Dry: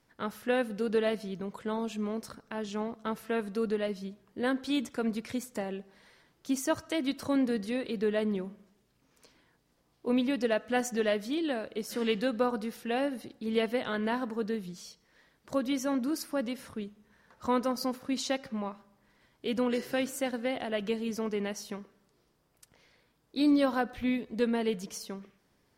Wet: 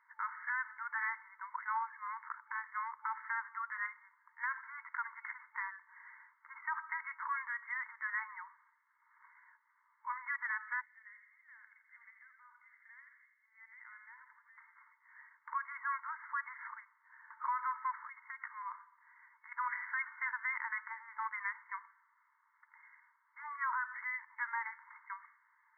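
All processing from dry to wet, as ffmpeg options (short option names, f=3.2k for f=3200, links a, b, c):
-filter_complex "[0:a]asettb=1/sr,asplit=3[a][b][c];[a]atrim=end=10.814[d];[b]atrim=start=10.81:end=14.58,asetpts=PTS-STARTPTS,afade=t=in:d=0.004:c=qsin,afade=t=out:st=3.766:d=0.004:c=qsin,acompressor=threshold=-33dB:ratio=10:attack=3.2:release=140:knee=1:detection=peak,bandpass=f=2.6k:t=q:w=8,aecho=1:1:83|166|249|332|415|498:0.447|0.237|0.125|0.0665|0.0352|0.0187,atrim=end_sample=166257[e];[c]atrim=start=14.576[f];[d][e]acrossfade=d=0.004:c1=hsin:c2=qsin[g];[g][f]acrossfade=d=0.004:c1=qsin:c2=hsin,asettb=1/sr,asplit=3[h][i][j];[h]atrim=end=18.044[k];[i]atrim=start=18.04:end=19.52,asetpts=PTS-STARTPTS,afade=t=in:d=0.004:c=qsin,afade=t=out:st=1.476:d=0.004:c=qsin,highpass=300,acompressor=threshold=-38dB:ratio=16:attack=3.2:release=140:knee=1:detection=peak[l];[j]atrim=start=19.516[m];[k][l]acrossfade=d=0.004:c1=hsin:c2=qsin[n];[n][m]acrossfade=d=0.004:c1=qsin:c2=hsin,afftfilt=real='re*between(b*sr/4096,880,2200)':imag='im*between(b*sr/4096,880,2200)':win_size=4096:overlap=0.75,alimiter=level_in=11dB:limit=-24dB:level=0:latency=1:release=47,volume=-11dB,volume=7.5dB"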